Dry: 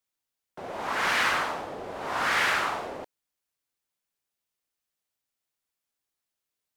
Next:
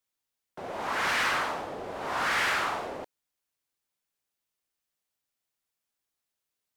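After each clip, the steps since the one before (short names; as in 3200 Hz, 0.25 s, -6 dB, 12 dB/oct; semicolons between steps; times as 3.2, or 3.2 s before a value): soft clip -20.5 dBFS, distortion -16 dB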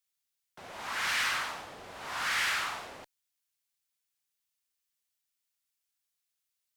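passive tone stack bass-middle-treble 5-5-5; gain +7.5 dB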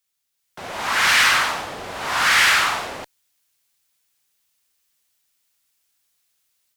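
AGC gain up to 7.5 dB; gain +7 dB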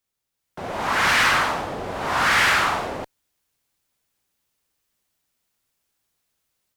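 tilt shelf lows +6.5 dB, about 1200 Hz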